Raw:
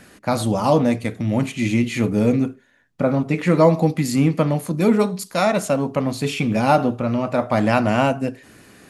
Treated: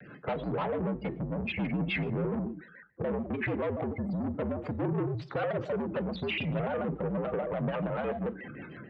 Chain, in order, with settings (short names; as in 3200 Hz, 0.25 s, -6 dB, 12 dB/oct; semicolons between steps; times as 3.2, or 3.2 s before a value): spectral gate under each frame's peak -15 dB strong; dynamic EQ 190 Hz, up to -8 dB, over -32 dBFS, Q 0.91; AGC gain up to 11 dB; limiter -11 dBFS, peak gain reduction 9.5 dB; compressor 12:1, threshold -22 dBFS, peak gain reduction 8.5 dB; rotary speaker horn 6 Hz; soft clip -29 dBFS, distortion -9 dB; mistuned SSB -59 Hz 170–3500 Hz; two-slope reverb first 0.49 s, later 1.6 s, from -27 dB, DRR 11.5 dB; shaped vibrato square 6.9 Hz, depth 160 cents; gain +2 dB